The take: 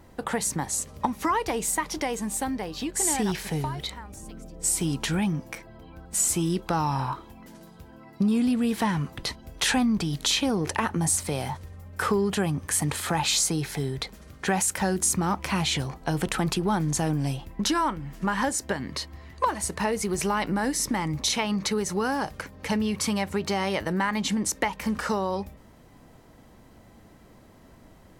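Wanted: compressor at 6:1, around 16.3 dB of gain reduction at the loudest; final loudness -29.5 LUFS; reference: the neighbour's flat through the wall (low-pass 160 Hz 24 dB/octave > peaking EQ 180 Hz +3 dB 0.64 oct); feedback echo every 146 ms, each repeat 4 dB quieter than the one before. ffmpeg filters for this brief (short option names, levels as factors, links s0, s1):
-af "acompressor=threshold=0.0112:ratio=6,lowpass=f=160:w=0.5412,lowpass=f=160:w=1.3066,equalizer=f=180:t=o:w=0.64:g=3,aecho=1:1:146|292|438|584|730|876|1022|1168|1314:0.631|0.398|0.25|0.158|0.0994|0.0626|0.0394|0.0249|0.0157,volume=8.41"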